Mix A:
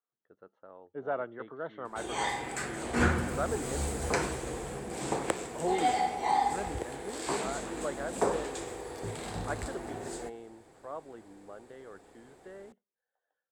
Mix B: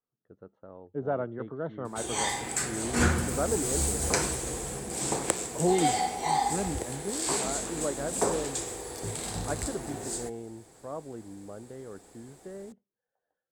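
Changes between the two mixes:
speech: add spectral tilt −4 dB per octave
master: add bass and treble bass +3 dB, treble +12 dB

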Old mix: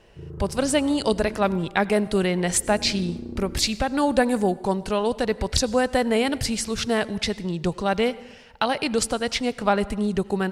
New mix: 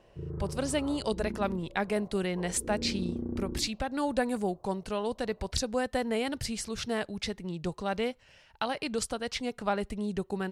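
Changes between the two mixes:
speech −8.0 dB
reverb: off

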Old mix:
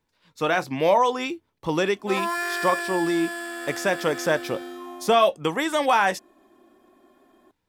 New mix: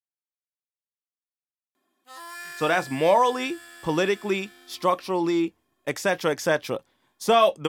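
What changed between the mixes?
speech: entry +2.20 s
background: add guitar amp tone stack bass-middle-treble 5-5-5

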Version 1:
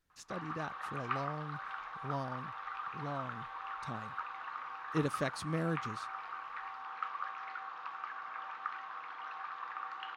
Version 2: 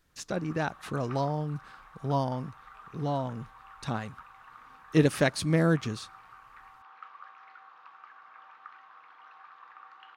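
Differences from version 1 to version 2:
speech +11.0 dB
background −8.5 dB

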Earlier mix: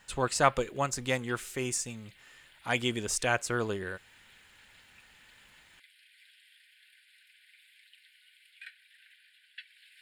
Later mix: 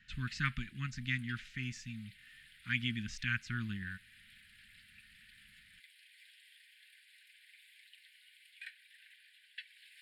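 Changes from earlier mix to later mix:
speech: add Gaussian smoothing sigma 2.2 samples
master: add elliptic band-stop filter 220–1,700 Hz, stop band 70 dB

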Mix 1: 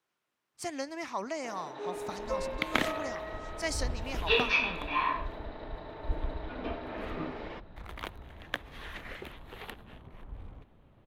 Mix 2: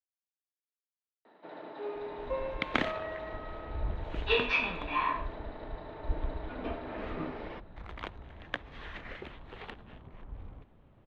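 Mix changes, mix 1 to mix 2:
speech: muted
master: add high-frequency loss of the air 140 metres

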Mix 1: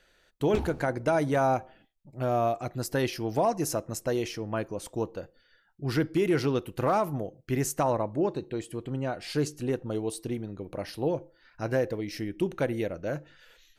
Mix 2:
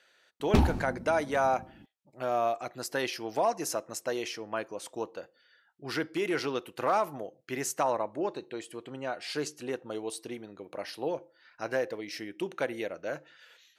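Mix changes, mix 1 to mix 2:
speech: add meter weighting curve A
background +10.5 dB

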